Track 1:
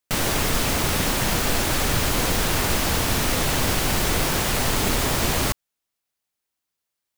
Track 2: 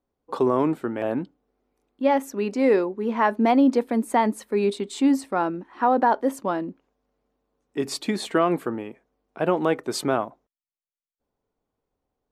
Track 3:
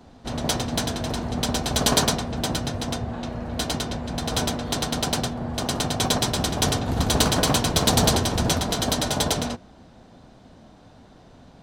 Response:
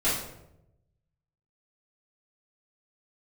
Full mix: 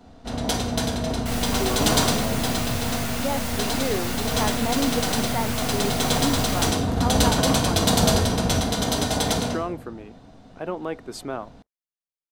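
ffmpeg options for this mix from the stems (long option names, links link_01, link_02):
-filter_complex "[0:a]highpass=frequency=760:width=0.5412,highpass=frequency=760:width=1.3066,aeval=exprs='clip(val(0),-1,0.0355)':channel_layout=same,adelay=1150,volume=-9dB,asplit=2[link_01][link_02];[link_02]volume=-10dB[link_03];[1:a]adelay=1200,volume=-8dB[link_04];[2:a]volume=-4dB,asplit=2[link_05][link_06];[link_06]volume=-11.5dB[link_07];[3:a]atrim=start_sample=2205[link_08];[link_03][link_07]amix=inputs=2:normalize=0[link_09];[link_09][link_08]afir=irnorm=-1:irlink=0[link_10];[link_01][link_04][link_05][link_10]amix=inputs=4:normalize=0"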